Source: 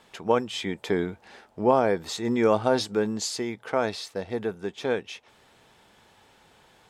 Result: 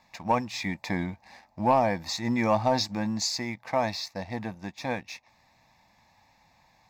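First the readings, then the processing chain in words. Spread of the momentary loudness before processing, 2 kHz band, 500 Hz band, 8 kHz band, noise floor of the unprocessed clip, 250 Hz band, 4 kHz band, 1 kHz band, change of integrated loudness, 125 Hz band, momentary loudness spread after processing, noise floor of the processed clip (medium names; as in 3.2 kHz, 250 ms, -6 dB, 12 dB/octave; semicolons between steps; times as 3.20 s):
12 LU, 0.0 dB, -5.5 dB, 0.0 dB, -59 dBFS, -1.5 dB, +1.0 dB, +1.5 dB, -2.0 dB, +2.5 dB, 12 LU, -64 dBFS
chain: static phaser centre 2.1 kHz, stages 8; waveshaping leveller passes 1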